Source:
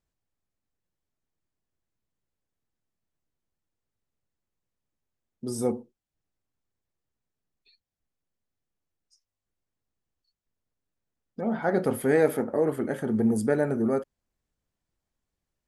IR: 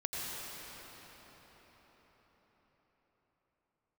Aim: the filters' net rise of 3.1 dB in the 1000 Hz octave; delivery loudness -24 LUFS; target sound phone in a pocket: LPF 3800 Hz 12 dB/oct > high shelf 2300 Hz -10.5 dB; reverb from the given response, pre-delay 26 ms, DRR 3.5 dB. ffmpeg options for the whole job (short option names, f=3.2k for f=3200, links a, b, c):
-filter_complex "[0:a]equalizer=f=1k:t=o:g=6.5,asplit=2[a][b];[1:a]atrim=start_sample=2205,adelay=26[c];[b][c]afir=irnorm=-1:irlink=0,volume=-8dB[d];[a][d]amix=inputs=2:normalize=0,lowpass=3.8k,highshelf=f=2.3k:g=-10.5,volume=1.5dB"